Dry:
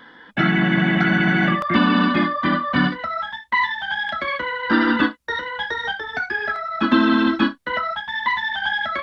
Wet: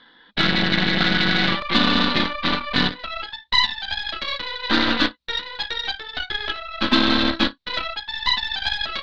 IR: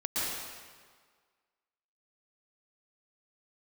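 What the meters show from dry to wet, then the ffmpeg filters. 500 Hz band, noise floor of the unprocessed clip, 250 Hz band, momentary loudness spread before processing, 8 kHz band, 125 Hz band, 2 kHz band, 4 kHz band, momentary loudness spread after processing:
-2.5 dB, -47 dBFS, -5.0 dB, 8 LU, n/a, -4.5 dB, -2.5 dB, +8.5 dB, 9 LU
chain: -af "aeval=exprs='0.668*(cos(1*acos(clip(val(0)/0.668,-1,1)))-cos(1*PI/2))+0.0473*(cos(7*acos(clip(val(0)/0.668,-1,1)))-cos(7*PI/2))+0.0841*(cos(8*acos(clip(val(0)/0.668,-1,1)))-cos(8*PI/2))':c=same,lowpass=f=4k:t=q:w=6.1,volume=-3.5dB"

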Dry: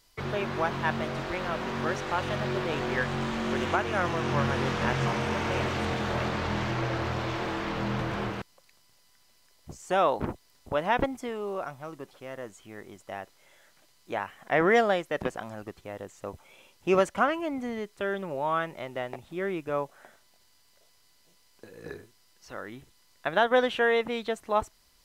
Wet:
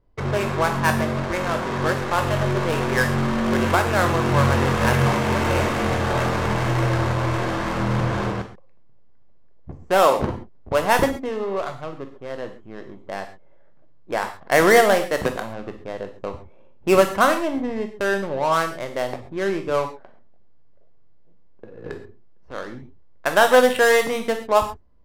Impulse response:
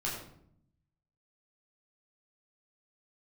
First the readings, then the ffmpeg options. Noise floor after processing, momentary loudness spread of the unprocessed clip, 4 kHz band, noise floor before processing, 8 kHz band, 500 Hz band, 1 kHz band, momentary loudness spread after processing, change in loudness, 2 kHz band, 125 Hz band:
-45 dBFS, 17 LU, +7.0 dB, -63 dBFS, +13.5 dB, +8.5 dB, +7.5 dB, 17 LU, +8.0 dB, +8.0 dB, +10.0 dB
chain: -filter_complex "[0:a]adynamicsmooth=sensitivity=5.5:basefreq=560,asplit=2[a][b];[b]aemphasis=mode=production:type=75fm[c];[1:a]atrim=start_sample=2205,atrim=end_sample=4410,asetrate=31311,aresample=44100[d];[c][d]afir=irnorm=-1:irlink=0,volume=-10.5dB[e];[a][e]amix=inputs=2:normalize=0,volume=5.5dB"

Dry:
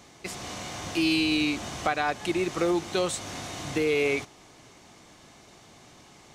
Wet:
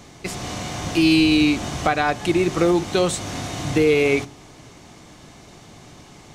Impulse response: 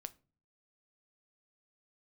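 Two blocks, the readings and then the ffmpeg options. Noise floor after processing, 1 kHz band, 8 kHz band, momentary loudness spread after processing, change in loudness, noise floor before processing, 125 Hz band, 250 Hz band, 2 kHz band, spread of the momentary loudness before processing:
-46 dBFS, +6.5 dB, +5.5 dB, 13 LU, +7.5 dB, -53 dBFS, +12.0 dB, +9.0 dB, +5.5 dB, 12 LU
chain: -filter_complex "[0:a]asplit=2[a][b];[1:a]atrim=start_sample=2205,lowshelf=f=360:g=11.5[c];[b][c]afir=irnorm=-1:irlink=0,volume=3.5dB[d];[a][d]amix=inputs=2:normalize=0"

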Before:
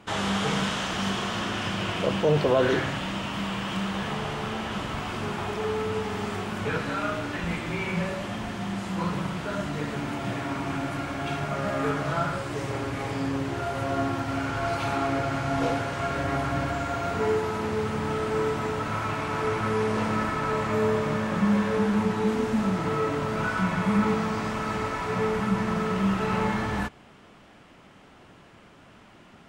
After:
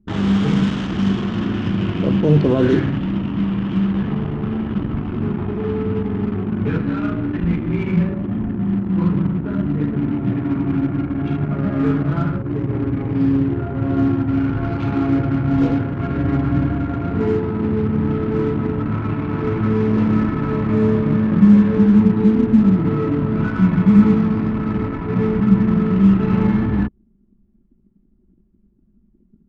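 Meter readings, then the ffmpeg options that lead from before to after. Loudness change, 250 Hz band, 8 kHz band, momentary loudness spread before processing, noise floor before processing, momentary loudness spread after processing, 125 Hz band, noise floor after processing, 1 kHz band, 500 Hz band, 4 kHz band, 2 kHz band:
+9.0 dB, +13.0 dB, under -10 dB, 7 LU, -52 dBFS, 8 LU, +12.0 dB, -57 dBFS, -2.5 dB, +3.5 dB, n/a, -2.5 dB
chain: -af "lowshelf=f=420:t=q:w=1.5:g=11,anlmdn=158"

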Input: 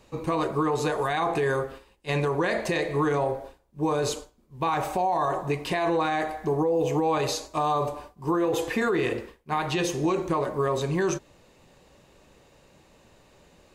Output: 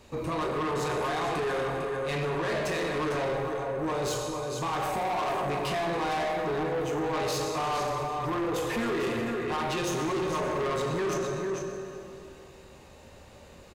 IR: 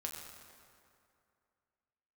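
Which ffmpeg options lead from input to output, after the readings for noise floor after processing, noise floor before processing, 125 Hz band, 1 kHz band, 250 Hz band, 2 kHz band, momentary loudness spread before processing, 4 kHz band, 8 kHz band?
-51 dBFS, -59 dBFS, -4.0 dB, -2.5 dB, -4.0 dB, -2.0 dB, 6 LU, -0.5 dB, -1.0 dB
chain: -filter_complex "[0:a]asplit=2[a][b];[b]alimiter=level_in=1dB:limit=-24dB:level=0:latency=1,volume=-1dB,volume=-1dB[c];[a][c]amix=inputs=2:normalize=0,aecho=1:1:451:0.376[d];[1:a]atrim=start_sample=2205[e];[d][e]afir=irnorm=-1:irlink=0,asoftclip=type=tanh:threshold=-26.5dB"

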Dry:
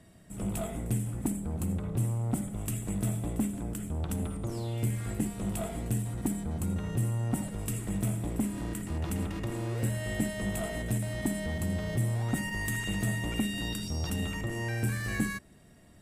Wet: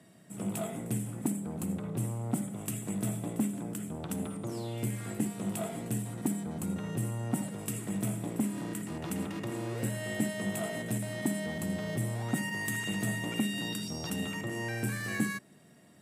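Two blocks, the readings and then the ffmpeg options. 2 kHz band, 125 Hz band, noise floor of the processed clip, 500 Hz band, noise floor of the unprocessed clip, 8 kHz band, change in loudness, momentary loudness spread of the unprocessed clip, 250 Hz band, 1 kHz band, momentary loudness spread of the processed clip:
0.0 dB, -5.0 dB, -57 dBFS, 0.0 dB, -55 dBFS, 0.0 dB, -2.0 dB, 4 LU, 0.0 dB, 0.0 dB, 4 LU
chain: -af "highpass=f=130:w=0.5412,highpass=f=130:w=1.3066"

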